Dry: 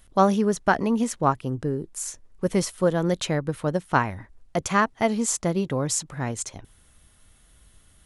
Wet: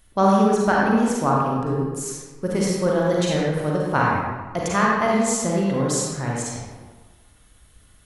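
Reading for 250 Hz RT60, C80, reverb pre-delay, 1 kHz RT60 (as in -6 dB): 1.3 s, 0.5 dB, 37 ms, 1.4 s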